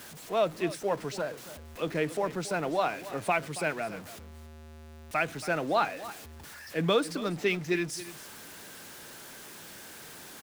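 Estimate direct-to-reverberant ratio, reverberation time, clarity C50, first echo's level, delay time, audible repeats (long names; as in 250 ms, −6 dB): no reverb audible, no reverb audible, no reverb audible, −15.5 dB, 278 ms, 1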